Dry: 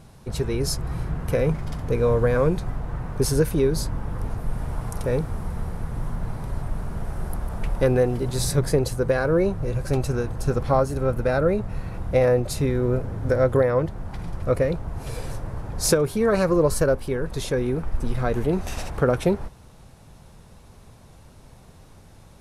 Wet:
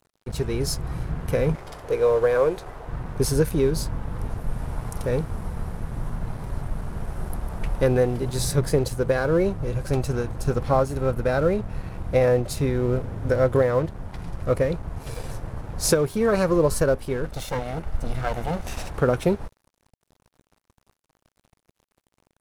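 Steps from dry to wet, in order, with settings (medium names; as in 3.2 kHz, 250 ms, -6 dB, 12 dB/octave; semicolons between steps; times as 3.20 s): 17.25–18.65 s: comb filter that takes the minimum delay 1.4 ms; crossover distortion -42 dBFS; 1.55–2.88 s: resonant low shelf 300 Hz -11 dB, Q 1.5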